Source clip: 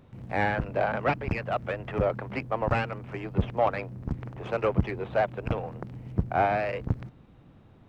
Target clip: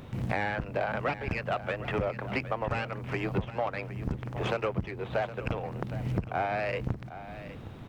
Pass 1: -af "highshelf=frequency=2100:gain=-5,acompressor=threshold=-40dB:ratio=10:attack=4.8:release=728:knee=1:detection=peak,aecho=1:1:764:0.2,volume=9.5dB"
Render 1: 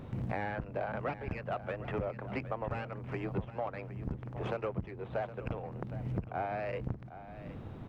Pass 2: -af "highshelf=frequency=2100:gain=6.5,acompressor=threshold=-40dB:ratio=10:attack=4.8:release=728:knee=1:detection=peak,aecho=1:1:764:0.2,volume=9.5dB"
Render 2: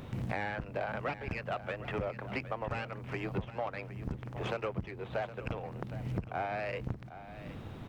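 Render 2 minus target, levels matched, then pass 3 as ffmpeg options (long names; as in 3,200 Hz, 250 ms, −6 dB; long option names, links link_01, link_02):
downward compressor: peak gain reduction +5.5 dB
-af "highshelf=frequency=2100:gain=6.5,acompressor=threshold=-34dB:ratio=10:attack=4.8:release=728:knee=1:detection=peak,aecho=1:1:764:0.2,volume=9.5dB"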